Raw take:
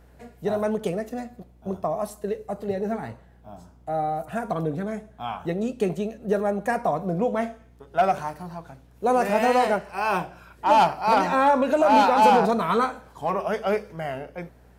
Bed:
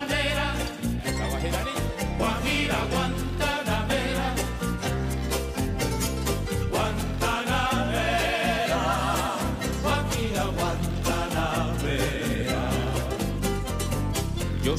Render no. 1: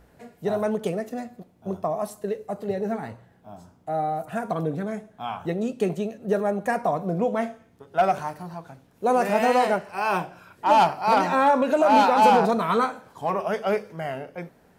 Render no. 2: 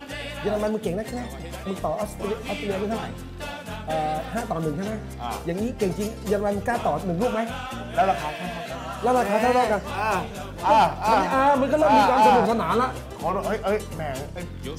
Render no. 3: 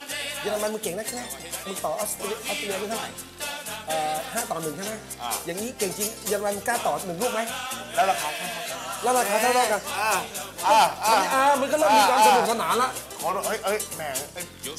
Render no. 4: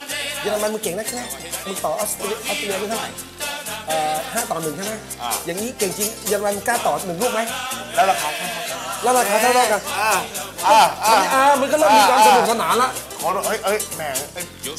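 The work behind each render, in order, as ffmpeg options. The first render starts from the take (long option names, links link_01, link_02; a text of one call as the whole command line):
ffmpeg -i in.wav -af "bandreject=frequency=60:width_type=h:width=4,bandreject=frequency=120:width_type=h:width=4" out.wav
ffmpeg -i in.wav -i bed.wav -filter_complex "[1:a]volume=-8.5dB[link_01];[0:a][link_01]amix=inputs=2:normalize=0" out.wav
ffmpeg -i in.wav -af "lowpass=frequency=12000:width=0.5412,lowpass=frequency=12000:width=1.3066,aemphasis=mode=production:type=riaa" out.wav
ffmpeg -i in.wav -af "volume=5.5dB,alimiter=limit=-1dB:level=0:latency=1" out.wav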